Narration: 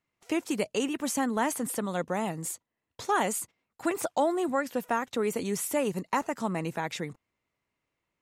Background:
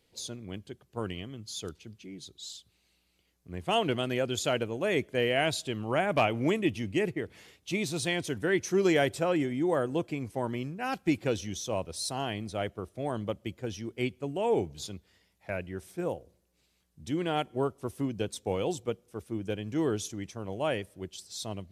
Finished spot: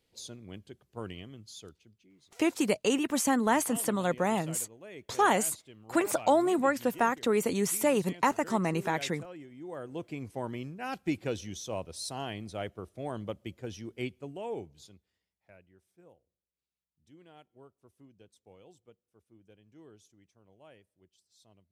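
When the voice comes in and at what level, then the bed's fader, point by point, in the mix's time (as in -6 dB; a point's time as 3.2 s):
2.10 s, +2.0 dB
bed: 1.34 s -5 dB
2.17 s -18.5 dB
9.5 s -18.5 dB
10.18 s -4 dB
13.99 s -4 dB
15.82 s -25.5 dB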